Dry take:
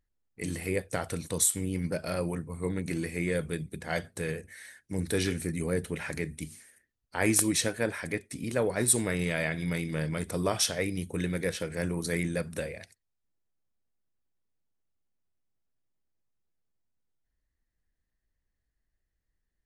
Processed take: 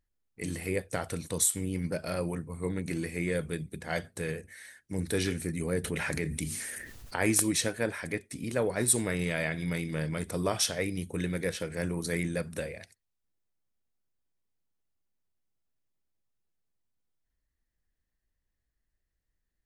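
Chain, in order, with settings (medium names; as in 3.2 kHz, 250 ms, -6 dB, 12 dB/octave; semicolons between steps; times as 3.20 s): 5.84–7.16 s: level flattener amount 70%; trim -1 dB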